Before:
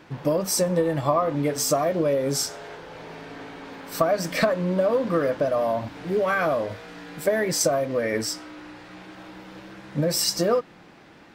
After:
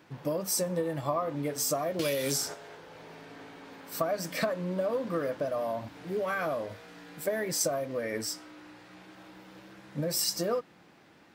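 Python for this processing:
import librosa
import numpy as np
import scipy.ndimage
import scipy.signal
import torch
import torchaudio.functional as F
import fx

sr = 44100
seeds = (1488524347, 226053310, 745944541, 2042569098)

y = scipy.signal.sosfilt(scipy.signal.butter(2, 65.0, 'highpass', fs=sr, output='sos'), x)
y = fx.high_shelf(y, sr, hz=8500.0, db=8.5)
y = fx.band_squash(y, sr, depth_pct=100, at=(1.99, 2.54))
y = F.gain(torch.from_numpy(y), -8.5).numpy()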